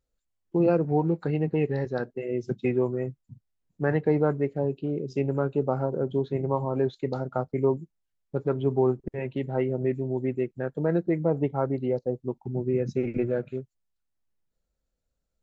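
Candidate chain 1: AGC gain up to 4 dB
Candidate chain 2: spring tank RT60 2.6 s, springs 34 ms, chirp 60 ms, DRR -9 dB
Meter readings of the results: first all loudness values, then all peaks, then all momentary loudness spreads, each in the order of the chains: -24.0, -18.5 LUFS; -7.0, -4.5 dBFS; 7, 8 LU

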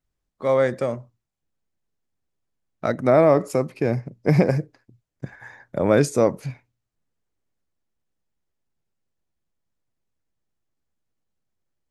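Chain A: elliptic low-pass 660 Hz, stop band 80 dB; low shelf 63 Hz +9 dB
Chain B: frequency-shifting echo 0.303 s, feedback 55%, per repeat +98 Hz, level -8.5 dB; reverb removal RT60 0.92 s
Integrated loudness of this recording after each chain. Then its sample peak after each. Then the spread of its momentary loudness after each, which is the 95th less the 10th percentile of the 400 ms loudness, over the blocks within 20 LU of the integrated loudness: -21.5, -23.0 LUFS; -5.0, -4.0 dBFS; 20, 20 LU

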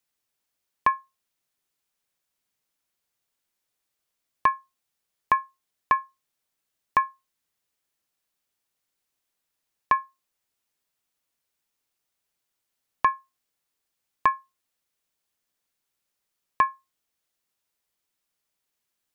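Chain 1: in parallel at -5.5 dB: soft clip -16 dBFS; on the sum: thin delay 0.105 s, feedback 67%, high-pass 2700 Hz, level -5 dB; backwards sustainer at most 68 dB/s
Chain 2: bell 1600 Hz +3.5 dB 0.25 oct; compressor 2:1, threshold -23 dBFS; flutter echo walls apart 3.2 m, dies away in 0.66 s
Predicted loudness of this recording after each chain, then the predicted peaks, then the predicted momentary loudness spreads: -25.0, -23.0 LUFS; -5.5, -7.0 dBFS; 21, 14 LU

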